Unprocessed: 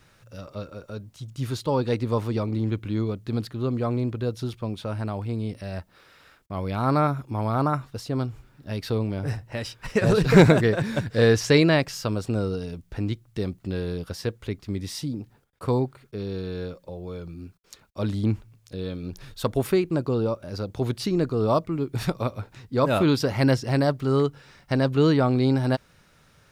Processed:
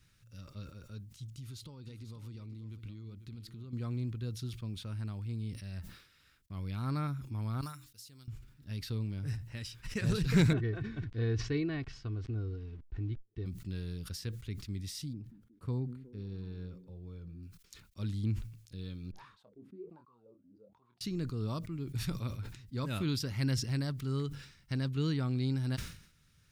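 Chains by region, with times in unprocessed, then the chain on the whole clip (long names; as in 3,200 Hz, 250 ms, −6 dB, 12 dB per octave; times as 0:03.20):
0:01.36–0:03.73: downward compressor 8 to 1, threshold −33 dBFS + notch filter 1,700 Hz, Q 9.2 + single-tap delay 494 ms −12.5 dB
0:07.61–0:08.28: mains-hum notches 60/120/180/240/300 Hz + downward expander −46 dBFS + first-order pre-emphasis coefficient 0.9
0:10.53–0:13.46: comb filter 2.7 ms, depth 69% + centre clipping without the shift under −39.5 dBFS + head-to-tape spacing loss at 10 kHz 40 dB
0:15.13–0:17.43: high-shelf EQ 2,100 Hz −11 dB + echo through a band-pass that steps 182 ms, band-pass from 210 Hz, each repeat 0.7 octaves, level −11 dB
0:19.11–0:21.01: parametric band 200 Hz +7.5 dB 0.41 octaves + LFO wah 1.3 Hz 260–1,100 Hz, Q 16 + double-tracking delay 25 ms −9.5 dB
whole clip: guitar amp tone stack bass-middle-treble 6-0-2; level that may fall only so fast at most 92 dB per second; level +6.5 dB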